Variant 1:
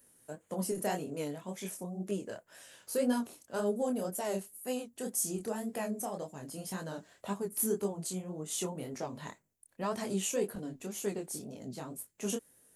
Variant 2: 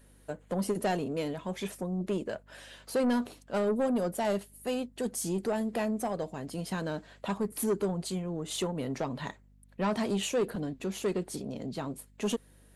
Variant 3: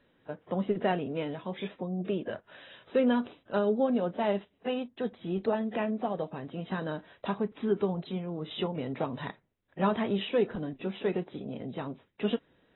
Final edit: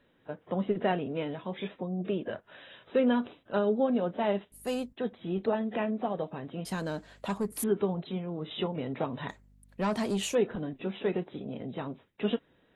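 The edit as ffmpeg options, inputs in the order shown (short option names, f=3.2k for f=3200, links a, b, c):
-filter_complex "[1:a]asplit=3[a][b][c];[2:a]asplit=4[d][e][f][g];[d]atrim=end=4.522[h];[a]atrim=start=4.518:end=4.932[i];[e]atrim=start=4.928:end=6.652[j];[b]atrim=start=6.648:end=7.642[k];[f]atrim=start=7.638:end=9.292[l];[c]atrim=start=9.288:end=10.352[m];[g]atrim=start=10.348[n];[h][i]acrossfade=d=0.004:c1=hsin:c2=hsin[o];[o][j]acrossfade=d=0.004:c1=hsin:c2=hsin[p];[p][k]acrossfade=d=0.004:c1=hsin:c2=hsin[q];[q][l]acrossfade=d=0.004:c1=hsin:c2=hsin[r];[r][m]acrossfade=d=0.004:c1=hsin:c2=hsin[s];[s][n]acrossfade=d=0.004:c1=hsin:c2=hsin"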